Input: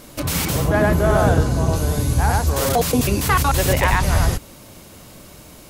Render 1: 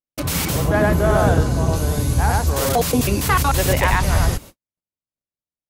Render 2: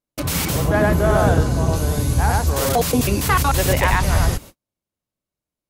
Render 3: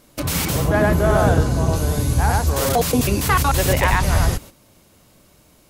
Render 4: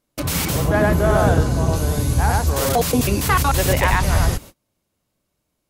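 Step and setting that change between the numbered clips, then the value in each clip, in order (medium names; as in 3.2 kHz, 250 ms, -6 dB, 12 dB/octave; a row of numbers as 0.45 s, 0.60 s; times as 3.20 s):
gate, range: -59 dB, -46 dB, -11 dB, -32 dB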